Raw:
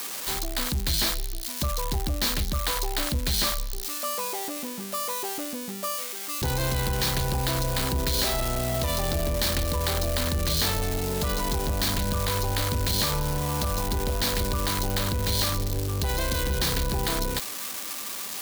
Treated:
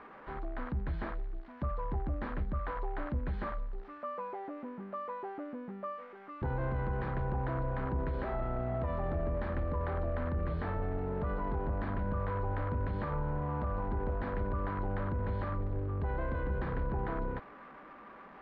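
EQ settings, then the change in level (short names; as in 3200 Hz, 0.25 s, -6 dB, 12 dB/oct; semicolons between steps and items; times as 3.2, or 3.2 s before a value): LPF 1600 Hz 24 dB/oct; -6.5 dB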